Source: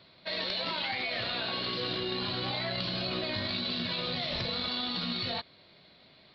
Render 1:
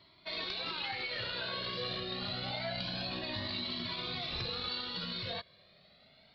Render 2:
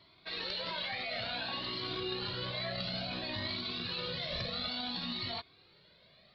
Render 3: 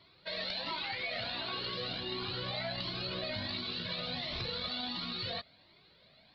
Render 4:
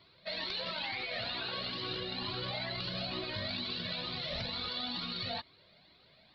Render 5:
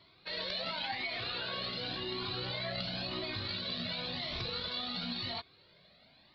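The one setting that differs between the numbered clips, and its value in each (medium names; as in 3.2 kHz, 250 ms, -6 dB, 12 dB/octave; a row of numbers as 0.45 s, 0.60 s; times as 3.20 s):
Shepard-style flanger, rate: 0.27 Hz, 0.57 Hz, 1.4 Hz, 2.2 Hz, 0.94 Hz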